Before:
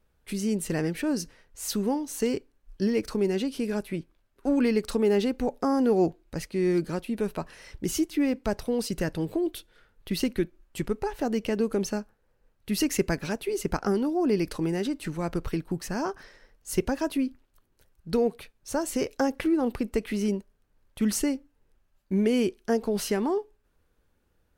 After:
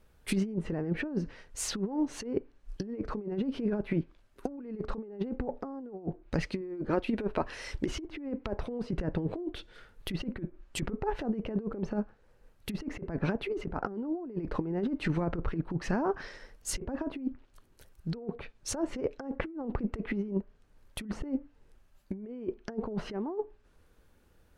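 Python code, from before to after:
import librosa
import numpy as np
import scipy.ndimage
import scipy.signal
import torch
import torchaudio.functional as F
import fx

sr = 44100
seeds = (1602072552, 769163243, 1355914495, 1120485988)

y = fx.peak_eq(x, sr, hz=170.0, db=-11.5, octaves=0.4, at=(6.61, 8.6))
y = fx.env_lowpass_down(y, sr, base_hz=1100.0, full_db=-25.0)
y = fx.over_compress(y, sr, threshold_db=-31.0, ratio=-0.5)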